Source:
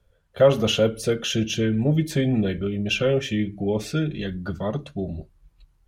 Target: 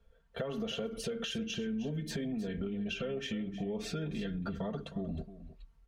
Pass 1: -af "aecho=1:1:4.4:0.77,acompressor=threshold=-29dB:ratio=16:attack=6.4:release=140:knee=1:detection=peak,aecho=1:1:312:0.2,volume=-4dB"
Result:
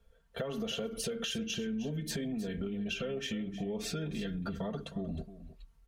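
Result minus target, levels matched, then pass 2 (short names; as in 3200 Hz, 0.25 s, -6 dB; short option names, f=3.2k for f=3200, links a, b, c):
8000 Hz band +5.5 dB
-af "aecho=1:1:4.4:0.77,acompressor=threshold=-29dB:ratio=16:attack=6.4:release=140:knee=1:detection=peak,highshelf=f=6.5k:g=-11,aecho=1:1:312:0.2,volume=-4dB"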